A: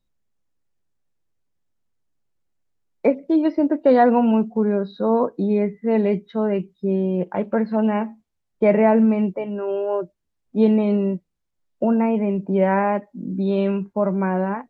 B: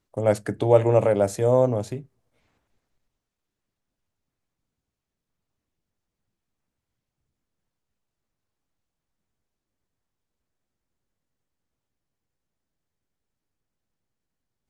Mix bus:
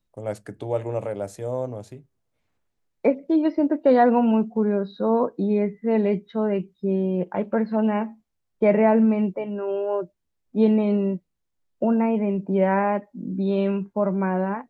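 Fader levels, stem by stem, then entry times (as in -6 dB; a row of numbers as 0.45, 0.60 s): -2.0, -9.0 dB; 0.00, 0.00 s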